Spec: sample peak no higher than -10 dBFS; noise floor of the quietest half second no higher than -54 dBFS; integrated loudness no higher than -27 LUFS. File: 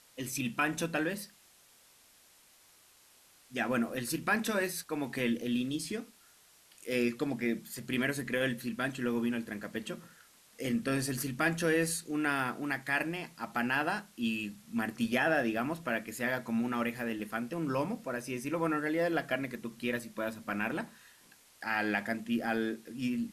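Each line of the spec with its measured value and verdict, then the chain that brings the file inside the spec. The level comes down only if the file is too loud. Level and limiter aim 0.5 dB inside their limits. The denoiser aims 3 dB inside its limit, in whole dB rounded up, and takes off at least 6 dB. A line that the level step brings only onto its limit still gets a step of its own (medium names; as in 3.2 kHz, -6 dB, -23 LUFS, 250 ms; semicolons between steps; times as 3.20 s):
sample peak -15.5 dBFS: pass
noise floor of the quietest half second -62 dBFS: pass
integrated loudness -33.5 LUFS: pass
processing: none needed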